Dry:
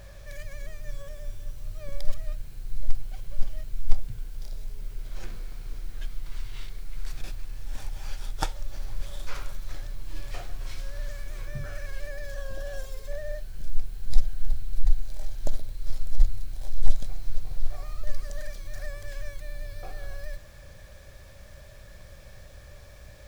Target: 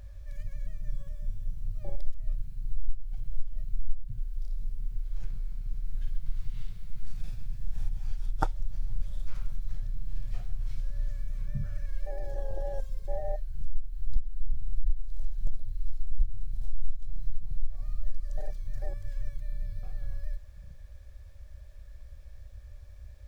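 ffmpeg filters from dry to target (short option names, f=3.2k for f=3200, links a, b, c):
-filter_complex "[0:a]asettb=1/sr,asplit=3[a][b][c];[a]atrim=end=5.814[d];[b]atrim=start=5.81:end=7.89,asetpts=PTS-STARTPTS,afade=t=in:d=0.004:c=qsin,afade=t=out:st=2.076:d=0.004:c=qsin,aecho=1:1:50|130|258|462.8|790.5:0.631|0.398|0.251|0.158|0.1,atrim=end_sample=91728[e];[c]atrim=start=7.886[f];[d][e]acrossfade=d=0.004:c1=hsin:c2=qsin[g];[g][f]acrossfade=d=0.004:c1=qsin:c2=hsin,acompressor=threshold=-21dB:ratio=4,afwtdn=0.0224,volume=2.5dB"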